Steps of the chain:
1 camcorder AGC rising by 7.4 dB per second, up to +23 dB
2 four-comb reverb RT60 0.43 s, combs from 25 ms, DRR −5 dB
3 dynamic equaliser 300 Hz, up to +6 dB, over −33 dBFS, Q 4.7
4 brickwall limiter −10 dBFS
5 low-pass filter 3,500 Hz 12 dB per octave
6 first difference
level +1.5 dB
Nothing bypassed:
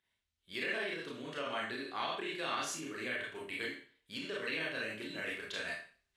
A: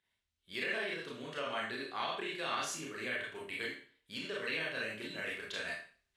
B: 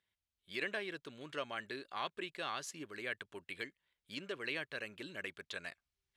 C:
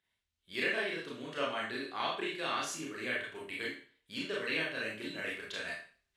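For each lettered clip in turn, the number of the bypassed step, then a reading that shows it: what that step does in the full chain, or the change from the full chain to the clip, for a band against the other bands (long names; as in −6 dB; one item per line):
3, 250 Hz band −2.0 dB
2, change in momentary loudness spread +1 LU
4, change in momentary loudness spread +2 LU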